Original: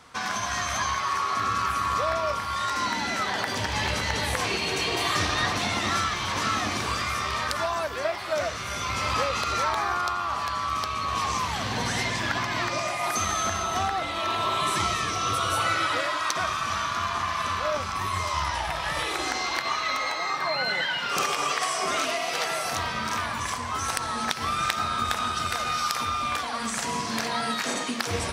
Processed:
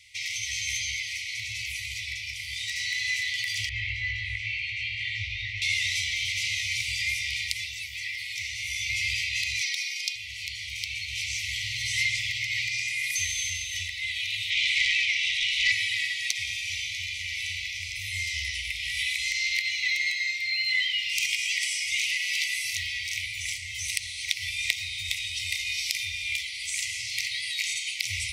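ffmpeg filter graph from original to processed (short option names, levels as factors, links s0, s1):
-filter_complex "[0:a]asettb=1/sr,asplit=3[s0][s1][s2];[s0]atrim=end=3.694[s3];[s1]atrim=start=3.69:end=5.62,asetpts=PTS-STARTPTS,afade=t=in:d=0.004:c=qsin,afade=t=out:st=1.926:d=0.004:c=qsin,lowpass=1900,asplit=2[s4][s5];[s5]adelay=19,volume=0.596[s6];[s4][s6]amix=inputs=2:normalize=0,atrim=end_sample=85113[s7];[s2]atrim=start=5.616[s8];[s3][s7]acrossfade=d=0.004:c1=hsin:c2=qsin[s9];[s9][s8]acrossfade=d=0.004:c1=qsin:c2=hsin,asettb=1/sr,asplit=3[s10][s11][s12];[s10]atrim=end=9.614[s13];[s11]atrim=start=9.61:end=10.16,asetpts=PTS-STARTPTS,afade=t=in:d=0.004:c=qsin,afade=t=out:st=0.546:d=0.004:c=qsin,highpass=f=390:w=0.5412,highpass=f=390:w=1.3066,equalizer=f=5400:t=o:w=0.48:g=7,aecho=1:1:3.2:0.7,atrim=end_sample=24255[s14];[s12]atrim=start=10.156[s15];[s13][s14]acrossfade=d=0.004:c1=hsin:c2=qsin[s16];[s16][s15]acrossfade=d=0.004:c1=qsin:c2=hsin,asettb=1/sr,asplit=3[s17][s18][s19];[s17]atrim=end=14.504[s20];[s18]atrim=start=14.5:end=15.72,asetpts=PTS-STARTPTS,afade=t=in:d=0.004:c=qsin,afade=t=out:st=1.216:d=0.004:c=qsin,highpass=480,lowpass=2500,aeval=exprs='0.178*sin(PI/2*2.24*val(0)/0.178)':c=same[s21];[s19]atrim=start=15.716[s22];[s20][s21]acrossfade=d=0.004:c1=hsin:c2=qsin[s23];[s23][s22]acrossfade=d=0.004:c1=qsin:c2=hsin,afftfilt=real='re*(1-between(b*sr/4096,120,1900))':imag='im*(1-between(b*sr/4096,120,1900))':win_size=4096:overlap=0.75,highshelf=f=1700:t=q:w=3:g=7,volume=0.473"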